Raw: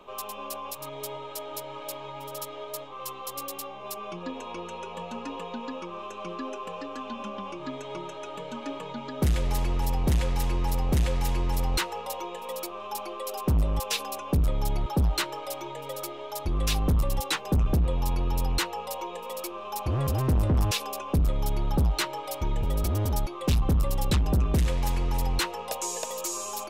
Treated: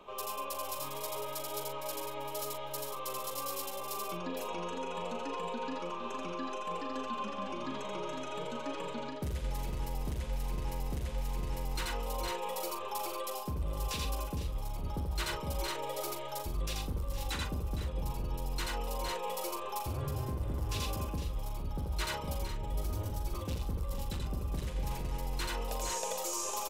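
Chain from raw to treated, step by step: tapped delay 83/85/461/503 ms -6.5/-4/-9/-8.5 dB; reverse; compressor 10:1, threshold -29 dBFS, peak gain reduction 14.5 dB; reverse; doubler 41 ms -8.5 dB; gain -3.5 dB

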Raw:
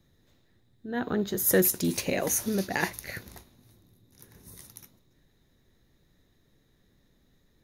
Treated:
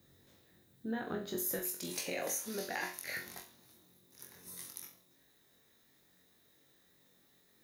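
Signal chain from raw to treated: HPF 140 Hz 6 dB/oct, from 1.59 s 590 Hz; compressor 6:1, threshold -37 dBFS, peak gain reduction 17 dB; added noise violet -74 dBFS; flutter echo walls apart 3.8 m, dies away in 0.33 s

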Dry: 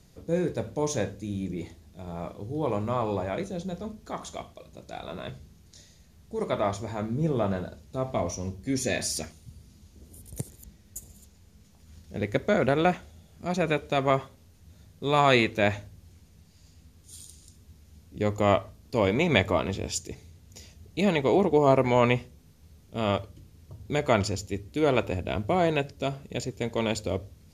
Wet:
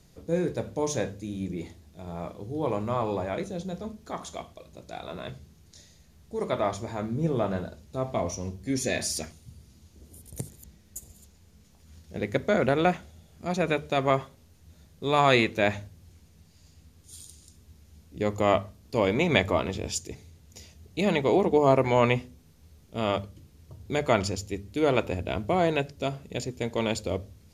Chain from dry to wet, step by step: notches 50/100/150/200/250 Hz

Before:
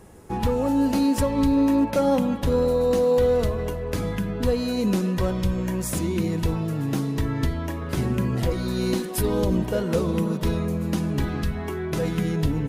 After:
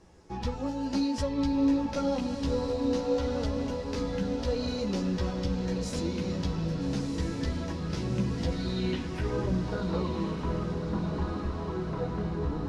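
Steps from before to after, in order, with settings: chorus voices 6, 0.55 Hz, delay 14 ms, depth 3.6 ms; low-pass sweep 5300 Hz -> 1100 Hz, 8.45–9.87; diffused feedback echo 1.305 s, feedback 62%, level -6 dB; gain -6 dB

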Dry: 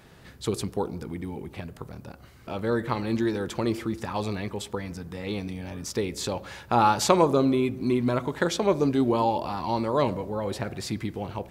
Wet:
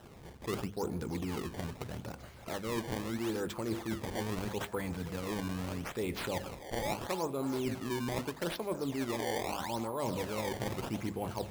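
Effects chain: notches 50/100/150/200/250 Hz; reverse; compressor 10:1, threshold -32 dBFS, peak gain reduction 18.5 dB; reverse; delay with a stepping band-pass 0.323 s, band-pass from 750 Hz, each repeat 0.7 oct, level -9 dB; decimation with a swept rate 19×, swing 160% 0.78 Hz

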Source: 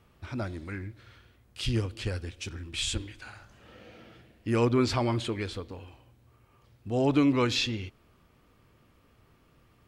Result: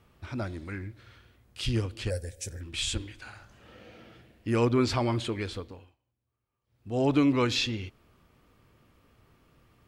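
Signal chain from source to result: 2.1–2.61 EQ curve 110 Hz 0 dB, 340 Hz -9 dB, 530 Hz +10 dB, 1200 Hz -19 dB, 1700 Hz 0 dB, 2900 Hz -14 dB, 8300 Hz +12 dB; 5.6–7.02 dip -23.5 dB, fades 0.36 s

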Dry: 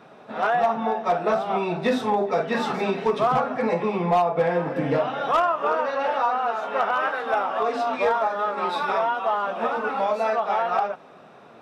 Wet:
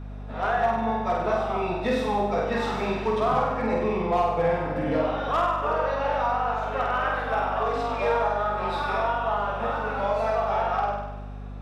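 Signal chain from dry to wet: flutter echo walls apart 8.4 m, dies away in 0.96 s; hum 50 Hz, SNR 11 dB; gain -5 dB

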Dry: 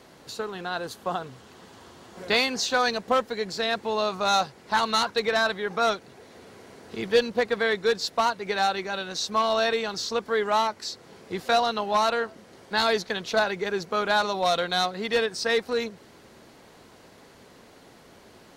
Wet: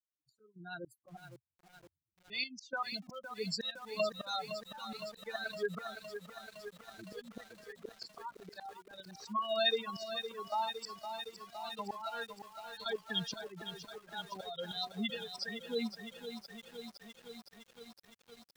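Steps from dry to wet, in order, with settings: per-bin expansion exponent 3; gate -57 dBFS, range -16 dB; spectral gate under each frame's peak -25 dB strong; high shelf 2700 Hz -10.5 dB; compressor 5:1, threshold -42 dBFS, peak gain reduction 20.5 dB; bell 4300 Hz +14.5 dB 1.7 oct; auto swell 0.402 s; step gate "..x.xxxxxxxx." 154 bpm -12 dB; lo-fi delay 0.512 s, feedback 80%, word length 11-bit, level -9 dB; gain +11 dB

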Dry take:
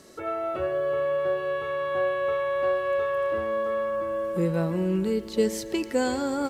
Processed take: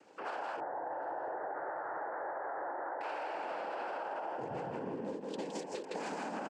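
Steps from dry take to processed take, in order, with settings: Wiener smoothing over 15 samples; noise vocoder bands 8; HPF 850 Hz 6 dB/oct; echo 0.163 s -5.5 dB; limiter -26 dBFS, peak gain reduction 9 dB; compressor, threshold -36 dBFS, peak gain reduction 6 dB; 0.6–3.01 steep low-pass 1900 Hz 96 dB/oct; feedback echo 0.75 s, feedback 38%, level -24 dB; ending taper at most 130 dB/s

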